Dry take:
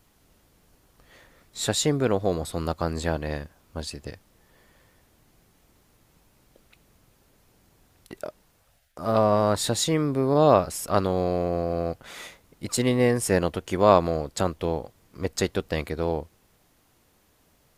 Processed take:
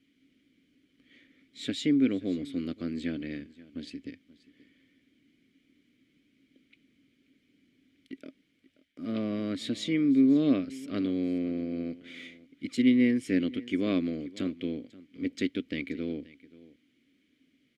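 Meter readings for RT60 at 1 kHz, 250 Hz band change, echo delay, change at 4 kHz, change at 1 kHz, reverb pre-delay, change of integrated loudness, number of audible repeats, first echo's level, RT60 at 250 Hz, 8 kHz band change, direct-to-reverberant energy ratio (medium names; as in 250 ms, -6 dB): no reverb, +2.0 dB, 530 ms, -8.0 dB, -24.5 dB, no reverb, -4.5 dB, 1, -20.0 dB, no reverb, under -15 dB, no reverb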